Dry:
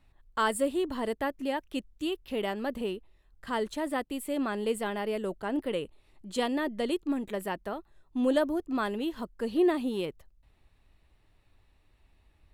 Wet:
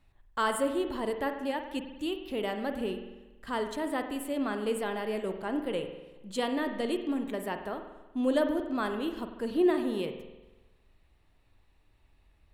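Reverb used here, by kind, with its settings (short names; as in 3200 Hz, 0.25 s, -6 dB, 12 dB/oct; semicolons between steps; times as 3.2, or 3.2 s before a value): spring tank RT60 1.1 s, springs 47 ms, chirp 60 ms, DRR 6.5 dB; gain -1.5 dB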